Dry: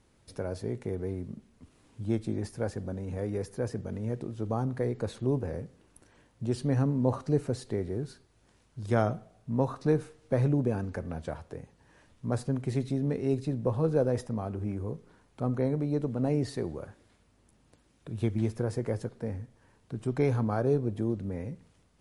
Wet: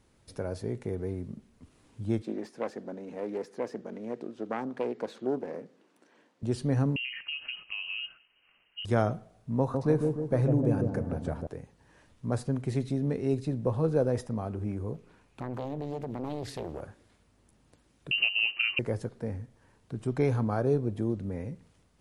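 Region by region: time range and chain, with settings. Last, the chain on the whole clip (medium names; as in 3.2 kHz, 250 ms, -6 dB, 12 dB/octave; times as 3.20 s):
2.22–6.43 s: self-modulated delay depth 0.31 ms + high-pass 220 Hz 24 dB/octave + distance through air 68 m
6.96–8.85 s: high-pass 100 Hz 24 dB/octave + compression 16:1, threshold -31 dBFS + frequency inversion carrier 3 kHz
9.59–11.47 s: peaking EQ 3.5 kHz -3.5 dB 1.9 oct + feedback echo behind a low-pass 150 ms, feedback 55%, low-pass 740 Hz, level -3 dB
14.94–16.81 s: peaking EQ 2.5 kHz +9 dB 0.3 oct + compression 4:1, threshold -30 dBFS + loudspeaker Doppler distortion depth 0.94 ms
18.11–18.79 s: frequency inversion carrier 2.9 kHz + three bands compressed up and down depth 100%
whole clip: none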